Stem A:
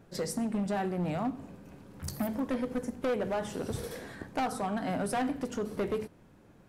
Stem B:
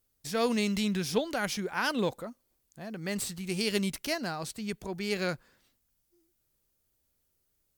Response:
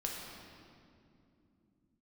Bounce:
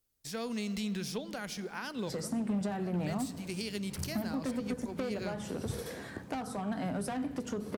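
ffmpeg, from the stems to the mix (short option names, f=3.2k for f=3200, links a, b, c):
-filter_complex "[0:a]highpass=52,adelay=1950,volume=0.5dB[a];[1:a]volume=-6dB,asplit=2[b][c];[c]volume=-15dB[d];[2:a]atrim=start_sample=2205[e];[d][e]afir=irnorm=-1:irlink=0[f];[a][b][f]amix=inputs=3:normalize=0,equalizer=f=5.7k:t=o:w=1.7:g=2,acrossover=split=240[g][h];[h]acompressor=threshold=-37dB:ratio=4[i];[g][i]amix=inputs=2:normalize=0"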